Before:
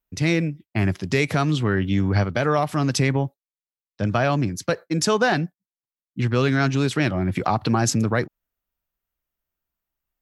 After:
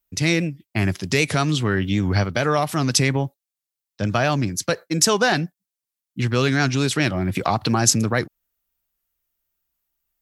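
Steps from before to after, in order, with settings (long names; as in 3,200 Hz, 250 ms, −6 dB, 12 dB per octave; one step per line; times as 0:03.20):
high-shelf EQ 3,400 Hz +10 dB
wow of a warped record 78 rpm, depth 100 cents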